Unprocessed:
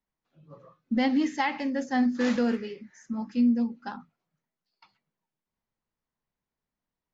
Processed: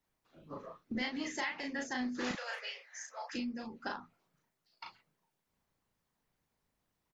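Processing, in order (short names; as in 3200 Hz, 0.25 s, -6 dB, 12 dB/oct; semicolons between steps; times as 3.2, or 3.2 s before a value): 2.31–3.35 Chebyshev high-pass 520 Hz, order 6; harmonic-percussive split harmonic -16 dB; compressor 4:1, threshold -48 dBFS, peak gain reduction 16 dB; doubler 36 ms -3 dB; gain +9.5 dB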